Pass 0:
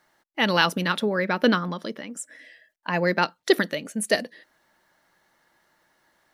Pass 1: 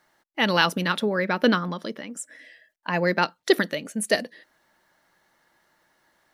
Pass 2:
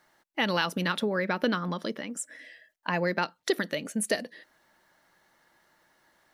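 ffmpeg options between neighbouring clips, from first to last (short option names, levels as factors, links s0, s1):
-af anull
-af "acompressor=threshold=0.0562:ratio=3"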